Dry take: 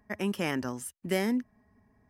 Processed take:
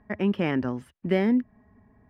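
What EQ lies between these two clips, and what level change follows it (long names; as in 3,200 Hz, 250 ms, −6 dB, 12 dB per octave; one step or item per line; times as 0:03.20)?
dynamic equaliser 1,100 Hz, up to −4 dB, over −45 dBFS, Q 0.75
high-frequency loss of the air 390 metres
+7.5 dB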